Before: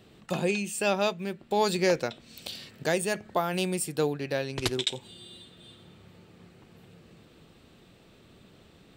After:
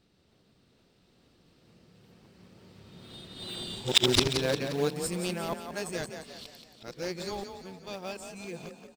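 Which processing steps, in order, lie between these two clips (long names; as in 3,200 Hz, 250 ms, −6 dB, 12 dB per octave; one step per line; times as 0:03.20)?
played backwards from end to start
source passing by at 0:03.66, 12 m/s, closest 4.1 metres
parametric band 5,200 Hz +8 dB 0.66 octaves
in parallel at −8.5 dB: sample-and-hold swept by an LFO 33×, swing 160% 2.2 Hz
on the sum: echo with shifted repeats 176 ms, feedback 47%, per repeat +30 Hz, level −8 dB
level +6.5 dB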